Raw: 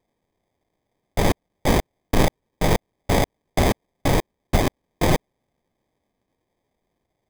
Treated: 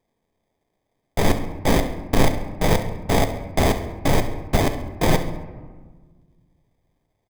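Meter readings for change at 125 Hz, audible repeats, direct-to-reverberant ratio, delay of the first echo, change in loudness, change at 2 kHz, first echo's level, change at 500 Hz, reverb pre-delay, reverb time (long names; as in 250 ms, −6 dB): +1.0 dB, 2, 7.0 dB, 68 ms, +1.0 dB, +1.0 dB, −14.0 dB, +1.0 dB, 4 ms, 1.5 s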